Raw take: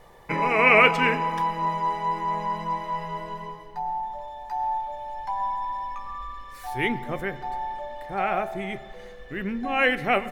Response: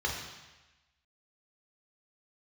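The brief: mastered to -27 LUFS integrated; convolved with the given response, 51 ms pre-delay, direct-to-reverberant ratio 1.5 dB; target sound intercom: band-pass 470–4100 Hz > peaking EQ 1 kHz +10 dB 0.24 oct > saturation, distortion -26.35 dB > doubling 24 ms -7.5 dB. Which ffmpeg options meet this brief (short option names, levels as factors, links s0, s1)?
-filter_complex "[0:a]asplit=2[s0][s1];[1:a]atrim=start_sample=2205,adelay=51[s2];[s1][s2]afir=irnorm=-1:irlink=0,volume=0.355[s3];[s0][s3]amix=inputs=2:normalize=0,highpass=470,lowpass=4100,equalizer=f=1000:t=o:w=0.24:g=10,asoftclip=threshold=0.75,asplit=2[s4][s5];[s5]adelay=24,volume=0.422[s6];[s4][s6]amix=inputs=2:normalize=0,volume=0.316"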